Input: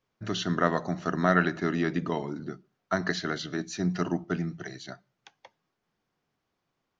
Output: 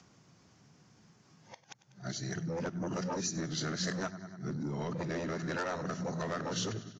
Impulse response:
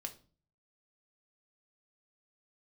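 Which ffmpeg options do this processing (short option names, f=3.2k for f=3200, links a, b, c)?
-filter_complex "[0:a]areverse,aecho=1:1:97|194|291|388|485:0.112|0.0628|0.0352|0.0197|0.011,acrossover=split=180|720[a][b][c];[a]aeval=exprs='0.0596*sin(PI/2*5.62*val(0)/0.0596)':c=same[d];[d][b][c]amix=inputs=3:normalize=0,highpass=90,lowshelf=f=120:g=-11.5,acompressor=threshold=-32dB:ratio=3,asoftclip=type=tanh:threshold=-28.5dB,aexciter=amount=2.1:drive=8.6:freq=5k,acompressor=mode=upward:threshold=-48dB:ratio=2.5" -ar 16000 -c:a aac -b:a 32k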